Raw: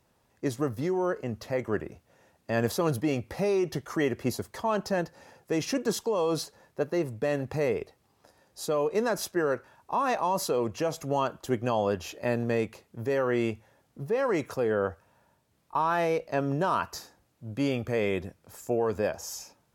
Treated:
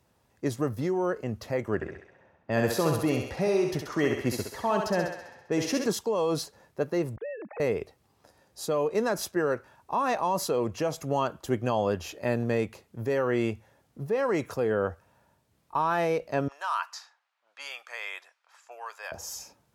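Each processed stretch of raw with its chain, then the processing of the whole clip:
1.75–5.88 low-pass opened by the level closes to 1600 Hz, open at -27 dBFS + thinning echo 66 ms, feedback 62%, high-pass 410 Hz, level -3.5 dB
7.16–7.6 sine-wave speech + compressor 4:1, threshold -35 dBFS
16.48–19.12 low-pass opened by the level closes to 2800 Hz, open at -23 dBFS + HPF 940 Hz 24 dB/oct
whole clip: HPF 48 Hz; low shelf 70 Hz +7 dB

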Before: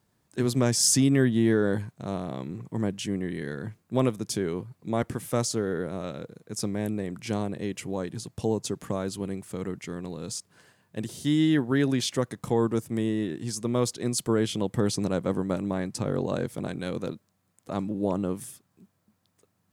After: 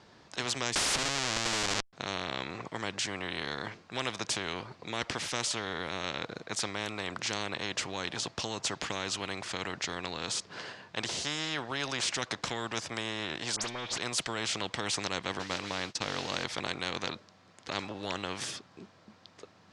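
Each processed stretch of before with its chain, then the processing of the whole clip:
0.75–1.93 expander -29 dBFS + Schmitt trigger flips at -28 dBFS
13.56–13.98 zero-crossing step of -39 dBFS + compressor, threshold -34 dBFS + dispersion highs, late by 62 ms, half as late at 2900 Hz
15.39–16.44 expander -29 dBFS + modulation noise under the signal 26 dB + notch 380 Hz, Q 5.5
whole clip: LPF 5100 Hz 24 dB/oct; tone controls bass -10 dB, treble +3 dB; spectral compressor 4:1

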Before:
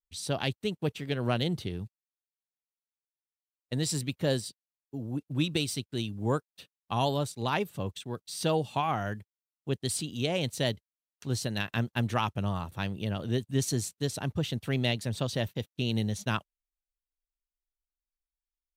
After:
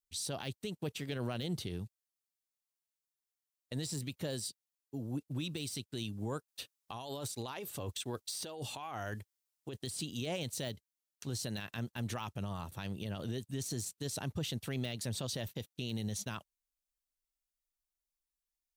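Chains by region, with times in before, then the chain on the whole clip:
6.48–9.84 bell 170 Hz -11.5 dB 0.55 oct + negative-ratio compressor -37 dBFS
whole clip: de-esser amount 80%; tone controls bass -1 dB, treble +7 dB; limiter -25.5 dBFS; gain -3 dB

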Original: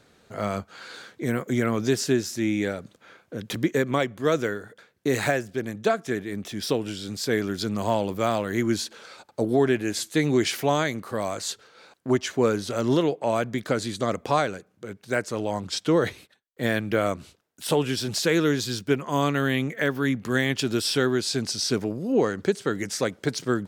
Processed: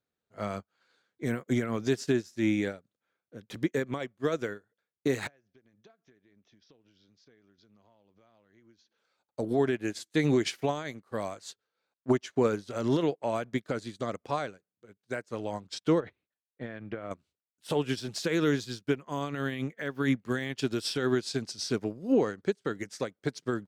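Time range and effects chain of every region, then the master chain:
5.27–8.98 elliptic low-pass 6200 Hz + compressor 8:1, threshold -35 dBFS
16–17.11 compressor 16:1, threshold -23 dBFS + LPF 2400 Hz
whole clip: high shelf 11000 Hz -9 dB; limiter -16.5 dBFS; upward expander 2.5:1, over -44 dBFS; gain +2.5 dB

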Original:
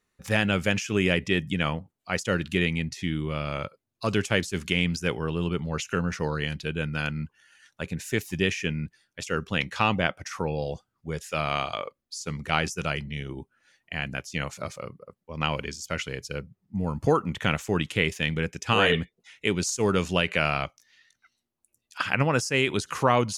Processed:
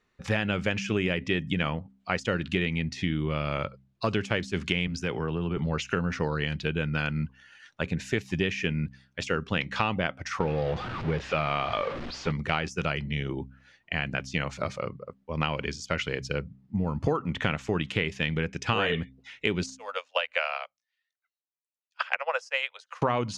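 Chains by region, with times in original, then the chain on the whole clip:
4.87–5.57 compressor 4:1, threshold -28 dBFS + three-band expander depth 70%
10.4–12.32 zero-crossing step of -32 dBFS + LPF 3500 Hz
19.66–23.02 steep high-pass 490 Hz 96 dB/oct + upward expander 2.5:1, over -40 dBFS
whole clip: LPF 4300 Hz 12 dB/oct; de-hum 65.57 Hz, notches 4; compressor 4:1, threshold -29 dBFS; gain +5 dB

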